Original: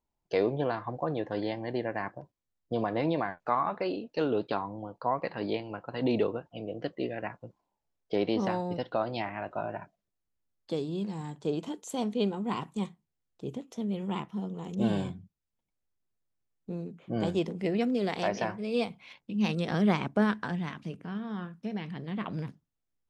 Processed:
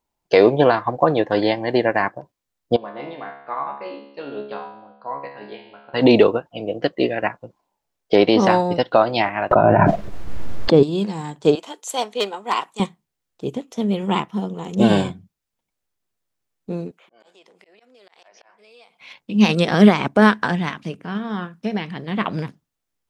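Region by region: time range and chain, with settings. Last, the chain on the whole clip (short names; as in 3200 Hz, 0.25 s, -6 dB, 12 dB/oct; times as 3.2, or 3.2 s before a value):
2.76–5.94 LPF 4300 Hz 24 dB/oct + bell 79 Hz -8 dB 1.5 oct + resonator 70 Hz, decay 0.88 s, mix 90%
9.51–10.83 LPF 2400 Hz 6 dB/oct + tilt -2.5 dB/oct + fast leveller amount 100%
11.55–12.8 overloaded stage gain 21 dB + HPF 580 Hz
16.91–19.01 HPF 690 Hz + auto swell 0.73 s + compressor 4:1, threshold -56 dBFS
whole clip: low shelf 280 Hz -7.5 dB; maximiser +20 dB; upward expander 1.5:1, over -29 dBFS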